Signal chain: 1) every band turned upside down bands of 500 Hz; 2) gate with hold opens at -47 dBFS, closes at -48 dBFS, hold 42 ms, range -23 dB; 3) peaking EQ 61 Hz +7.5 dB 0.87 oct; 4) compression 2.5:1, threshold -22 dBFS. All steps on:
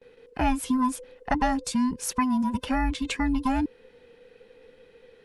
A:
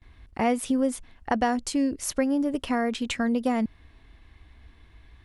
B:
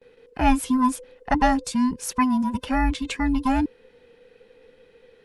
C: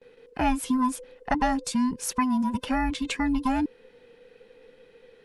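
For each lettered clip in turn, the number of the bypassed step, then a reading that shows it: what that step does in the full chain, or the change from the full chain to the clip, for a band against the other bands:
1, 500 Hz band +8.0 dB; 4, momentary loudness spread change +1 LU; 3, 125 Hz band -4.0 dB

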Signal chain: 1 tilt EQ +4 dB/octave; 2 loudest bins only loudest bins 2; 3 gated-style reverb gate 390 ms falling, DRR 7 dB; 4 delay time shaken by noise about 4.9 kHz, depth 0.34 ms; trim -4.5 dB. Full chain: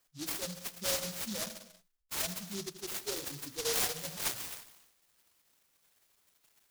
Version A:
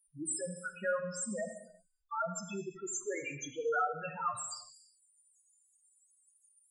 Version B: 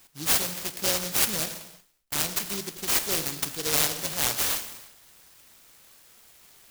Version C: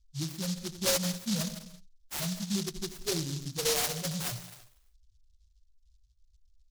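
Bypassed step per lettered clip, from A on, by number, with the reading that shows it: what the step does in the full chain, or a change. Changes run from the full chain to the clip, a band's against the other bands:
4, 4 kHz band -17.0 dB; 2, 500 Hz band -4.0 dB; 1, 125 Hz band +10.0 dB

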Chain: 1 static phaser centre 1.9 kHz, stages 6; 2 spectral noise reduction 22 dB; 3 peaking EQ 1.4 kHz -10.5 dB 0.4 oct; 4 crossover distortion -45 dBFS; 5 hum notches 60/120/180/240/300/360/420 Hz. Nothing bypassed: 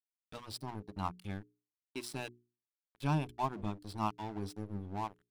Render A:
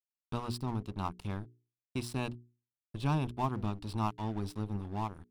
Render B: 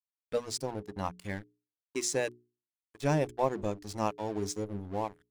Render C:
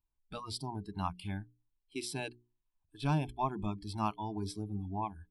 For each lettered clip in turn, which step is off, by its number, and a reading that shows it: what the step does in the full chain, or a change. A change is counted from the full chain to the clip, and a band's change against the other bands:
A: 2, 125 Hz band +3.5 dB; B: 1, 8 kHz band +10.5 dB; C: 4, distortion -12 dB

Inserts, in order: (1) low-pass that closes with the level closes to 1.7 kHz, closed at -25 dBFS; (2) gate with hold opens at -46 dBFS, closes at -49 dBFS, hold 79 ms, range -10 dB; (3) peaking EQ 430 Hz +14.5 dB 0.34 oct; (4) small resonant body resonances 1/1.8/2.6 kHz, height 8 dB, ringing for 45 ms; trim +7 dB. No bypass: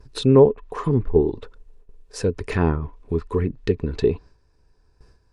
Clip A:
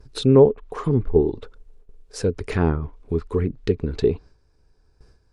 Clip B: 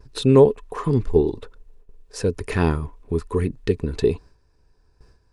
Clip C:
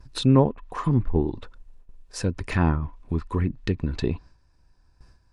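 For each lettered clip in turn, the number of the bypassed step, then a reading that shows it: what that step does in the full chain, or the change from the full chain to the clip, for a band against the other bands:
4, 1 kHz band -2.0 dB; 1, 8 kHz band +1.5 dB; 3, 500 Hz band -9.5 dB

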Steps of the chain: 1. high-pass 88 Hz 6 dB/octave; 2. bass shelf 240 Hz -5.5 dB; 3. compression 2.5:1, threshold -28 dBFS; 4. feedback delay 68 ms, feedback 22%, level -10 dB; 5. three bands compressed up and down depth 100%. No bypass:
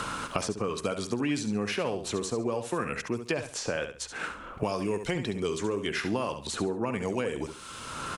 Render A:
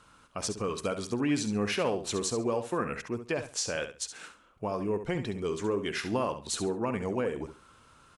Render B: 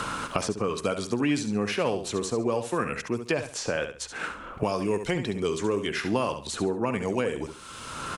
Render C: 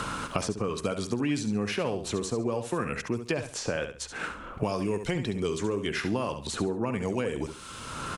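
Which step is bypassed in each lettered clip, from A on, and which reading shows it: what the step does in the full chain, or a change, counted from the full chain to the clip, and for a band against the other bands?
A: 5, crest factor change -6.0 dB; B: 3, momentary loudness spread change +1 LU; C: 2, 125 Hz band +3.5 dB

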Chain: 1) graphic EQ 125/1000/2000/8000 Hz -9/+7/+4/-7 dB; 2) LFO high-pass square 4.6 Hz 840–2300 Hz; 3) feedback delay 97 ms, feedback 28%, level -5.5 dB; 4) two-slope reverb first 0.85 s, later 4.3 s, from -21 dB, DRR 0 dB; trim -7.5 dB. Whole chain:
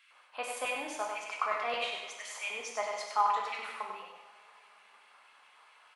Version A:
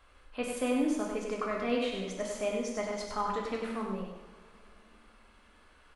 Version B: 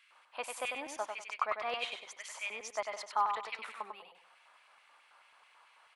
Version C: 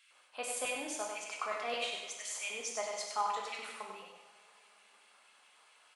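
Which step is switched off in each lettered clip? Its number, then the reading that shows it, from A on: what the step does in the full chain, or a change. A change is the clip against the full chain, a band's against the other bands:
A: 2, 250 Hz band +23.5 dB; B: 4, echo-to-direct 2.0 dB to -5.0 dB; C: 1, loudness change -3.0 LU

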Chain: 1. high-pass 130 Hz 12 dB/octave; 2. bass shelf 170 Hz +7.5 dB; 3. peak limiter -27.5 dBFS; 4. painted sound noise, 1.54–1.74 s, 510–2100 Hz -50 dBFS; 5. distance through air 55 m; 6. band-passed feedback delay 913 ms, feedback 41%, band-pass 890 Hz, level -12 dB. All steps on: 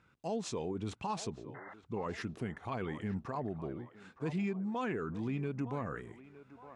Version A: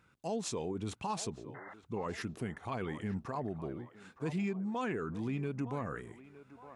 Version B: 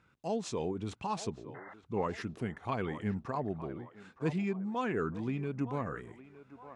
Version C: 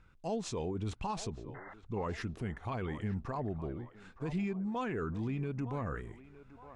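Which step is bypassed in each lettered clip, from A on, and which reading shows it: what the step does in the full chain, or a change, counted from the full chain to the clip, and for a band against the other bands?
5, 8 kHz band +4.5 dB; 3, crest factor change +4.5 dB; 1, 125 Hz band +2.5 dB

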